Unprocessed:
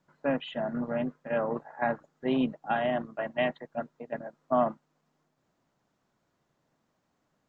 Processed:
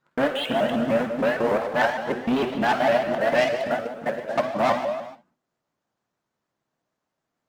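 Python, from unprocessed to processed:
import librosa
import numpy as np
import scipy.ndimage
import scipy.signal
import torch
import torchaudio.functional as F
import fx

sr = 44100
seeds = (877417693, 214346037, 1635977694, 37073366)

y = fx.local_reverse(x, sr, ms=175.0)
y = fx.leveller(y, sr, passes=3)
y = fx.low_shelf(y, sr, hz=200.0, db=-7.0)
y = fx.room_early_taps(y, sr, ms=(50, 63), db=(-12.0, -17.5))
y = fx.rev_gated(y, sr, seeds[0], gate_ms=460, shape='falling', drr_db=3.5)
y = fx.vibrato_shape(y, sr, shape='saw_up', rate_hz=6.6, depth_cents=160.0)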